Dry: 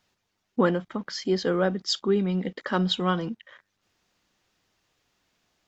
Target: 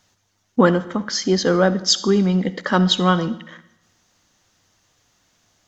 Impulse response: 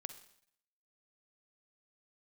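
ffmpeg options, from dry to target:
-filter_complex "[0:a]equalizer=f=100:t=o:w=0.33:g=7,equalizer=f=400:t=o:w=0.33:g=-4,equalizer=f=2.5k:t=o:w=0.33:g=-4,equalizer=f=6.3k:t=o:w=0.33:g=8,asplit=2[a][b];[1:a]atrim=start_sample=2205,asetrate=34839,aresample=44100[c];[b][c]afir=irnorm=-1:irlink=0,volume=2.5dB[d];[a][d]amix=inputs=2:normalize=0,volume=2.5dB"

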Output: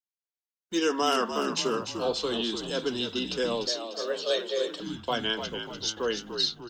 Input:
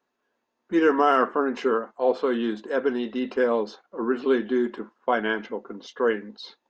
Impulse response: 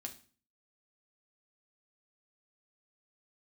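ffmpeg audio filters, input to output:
-filter_complex "[0:a]agate=range=-33dB:threshold=-42dB:ratio=3:detection=peak,asplit=7[a][b][c][d][e][f][g];[b]adelay=296,afreqshift=-57,volume=-8dB[h];[c]adelay=592,afreqshift=-114,volume=-13.5dB[i];[d]adelay=888,afreqshift=-171,volume=-19dB[j];[e]adelay=1184,afreqshift=-228,volume=-24.5dB[k];[f]adelay=1480,afreqshift=-285,volume=-30.1dB[l];[g]adelay=1776,afreqshift=-342,volume=-35.6dB[m];[a][h][i][j][k][l][m]amix=inputs=7:normalize=0,asettb=1/sr,asplit=3[n][o][p];[n]atrim=end=3.674[q];[o]atrim=start=3.67:end=4.8,asetpts=PTS-STARTPTS,afade=t=in:d=0.004:c=qsin,afade=t=out:st=1.126:d=0.004:c=qsin,afreqshift=160[r];[p]atrim=start=4.796[s];[q][r]acrossfade=d=0.004:c1=hsin:c2=qsin[t];[t][s]acrossfade=d=0.004:c1=qsin:c2=hsin,acrossover=split=270|560|2200[u][v][w][x];[x]aexciter=amount=12.3:drive=5.8:freq=2.8k[y];[u][v][w][y]amix=inputs=4:normalize=0,volume=-6.5dB" -ar 48000 -c:a libmp3lame -b:a 160k

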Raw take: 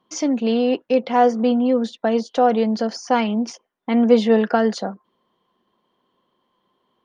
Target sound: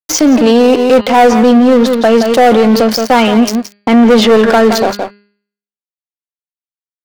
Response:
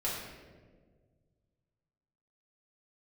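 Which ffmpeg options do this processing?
-af "aeval=exprs='sgn(val(0))*max(abs(val(0))-0.0211,0)':c=same,equalizer=f=190:t=o:w=0.23:g=-13,bandreject=f=204.2:t=h:w=4,bandreject=f=408.4:t=h:w=4,bandreject=f=612.6:t=h:w=4,bandreject=f=816.8:t=h:w=4,bandreject=f=1.021k:t=h:w=4,bandreject=f=1.2252k:t=h:w=4,bandreject=f=1.4294k:t=h:w=4,bandreject=f=1.6336k:t=h:w=4,bandreject=f=1.8378k:t=h:w=4,bandreject=f=2.042k:t=h:w=4,bandreject=f=2.2462k:t=h:w=4,bandreject=f=2.4504k:t=h:w=4,bandreject=f=2.6546k:t=h:w=4,bandreject=f=2.8588k:t=h:w=4,bandreject=f=3.063k:t=h:w=4,bandreject=f=3.2672k:t=h:w=4,bandreject=f=3.4714k:t=h:w=4,bandreject=f=3.6756k:t=h:w=4,bandreject=f=3.8798k:t=h:w=4,bandreject=f=4.084k:t=h:w=4,bandreject=f=4.2882k:t=h:w=4,bandreject=f=4.4924k:t=h:w=4,bandreject=f=4.6966k:t=h:w=4,asoftclip=type=tanh:threshold=-18dB,atempo=1,aecho=1:1:171:0.188,alimiter=level_in=28dB:limit=-1dB:release=50:level=0:latency=1,volume=-1dB"

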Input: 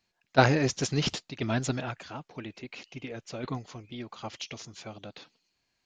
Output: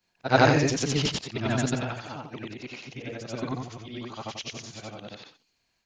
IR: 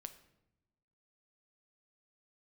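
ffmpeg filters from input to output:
-af "afftfilt=real='re':imag='-im':win_size=8192:overlap=0.75,volume=7.5dB"

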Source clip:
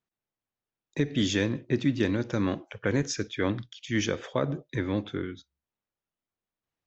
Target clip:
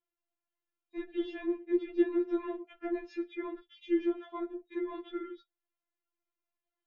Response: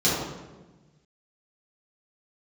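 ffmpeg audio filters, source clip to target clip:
-filter_complex "[0:a]lowpass=f=3.1k:w=0.5412,lowpass=f=3.1k:w=1.3066,acrossover=split=920[a][b];[b]acompressor=threshold=-48dB:ratio=6[c];[a][c]amix=inputs=2:normalize=0,afftfilt=real='re*4*eq(mod(b,16),0)':imag='im*4*eq(mod(b,16),0)':win_size=2048:overlap=0.75"

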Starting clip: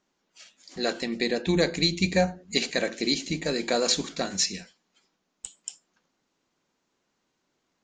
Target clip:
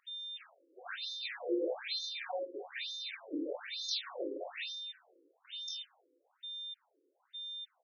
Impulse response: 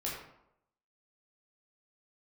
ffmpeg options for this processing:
-filter_complex "[0:a]areverse,acompressor=threshold=-38dB:ratio=4,areverse,acrusher=bits=2:mode=log:mix=0:aa=0.000001,aeval=exprs='val(0)+0.00501*sin(2*PI*3600*n/s)':c=same,aecho=1:1:80:0.299[a];[1:a]atrim=start_sample=2205,asetrate=27783,aresample=44100[b];[a][b]afir=irnorm=-1:irlink=0,afftfilt=real='re*between(b*sr/1024,370*pow(4800/370,0.5+0.5*sin(2*PI*1.1*pts/sr))/1.41,370*pow(4800/370,0.5+0.5*sin(2*PI*1.1*pts/sr))*1.41)':imag='im*between(b*sr/1024,370*pow(4800/370,0.5+0.5*sin(2*PI*1.1*pts/sr))/1.41,370*pow(4800/370,0.5+0.5*sin(2*PI*1.1*pts/sr))*1.41)':win_size=1024:overlap=0.75,volume=1dB"

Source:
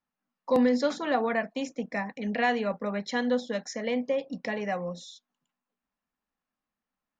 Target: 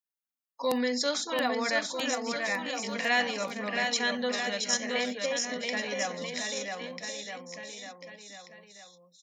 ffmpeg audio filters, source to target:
-filter_complex "[0:a]crystalizer=i=10:c=0,afftdn=nr=15:nf=-42,asplit=2[a][b];[b]aecho=0:1:530|1007|1436|1823|2170:0.631|0.398|0.251|0.158|0.1[c];[a][c]amix=inputs=2:normalize=0,atempo=0.78,lowshelf=f=68:g=-11.5,volume=-7.5dB"

